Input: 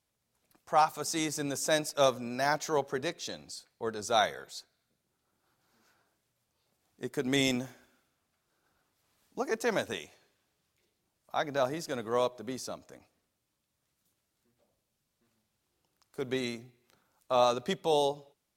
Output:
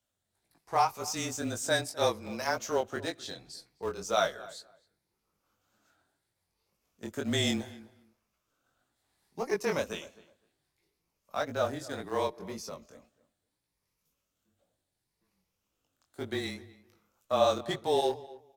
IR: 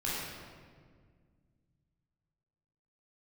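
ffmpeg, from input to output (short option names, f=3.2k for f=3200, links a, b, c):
-filter_complex "[0:a]afftfilt=real='re*pow(10,6/40*sin(2*PI*(0.85*log(max(b,1)*sr/1024/100)/log(2)-(0.69)*(pts-256)/sr)))':imag='im*pow(10,6/40*sin(2*PI*(0.85*log(max(b,1)*sr/1024/100)/log(2)-(0.69)*(pts-256)/sr)))':win_size=1024:overlap=0.75,asplit=2[a][b];[b]aeval=exprs='val(0)*gte(abs(val(0)),0.0355)':c=same,volume=-12dB[c];[a][c]amix=inputs=2:normalize=0,afreqshift=-26,flanger=delay=17.5:depth=6:speed=1.9,asplit=2[d][e];[e]adelay=257,lowpass=f=2.1k:p=1,volume=-19dB,asplit=2[f][g];[g]adelay=257,lowpass=f=2.1k:p=1,volume=0.18[h];[d][f][h]amix=inputs=3:normalize=0"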